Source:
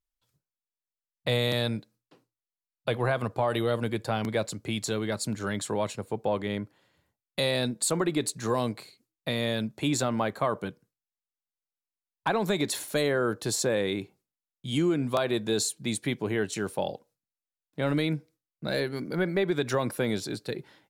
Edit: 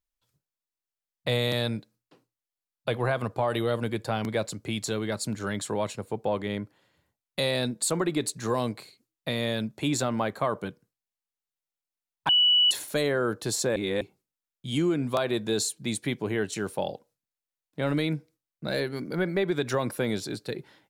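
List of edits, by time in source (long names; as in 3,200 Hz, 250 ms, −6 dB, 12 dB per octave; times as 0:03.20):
0:12.29–0:12.71: beep over 2,950 Hz −17 dBFS
0:13.76–0:14.01: reverse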